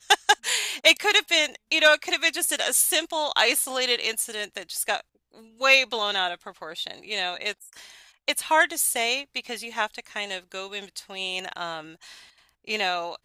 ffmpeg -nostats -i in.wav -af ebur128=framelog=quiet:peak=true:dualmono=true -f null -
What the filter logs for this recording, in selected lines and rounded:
Integrated loudness:
  I:         -20.2 LUFS
  Threshold: -30.9 LUFS
Loudness range:
  LRA:        11.0 LU
  Threshold: -41.3 LUFS
  LRA low:   -28.5 LUFS
  LRA high:  -17.4 LUFS
True peak:
  Peak:       -3.7 dBFS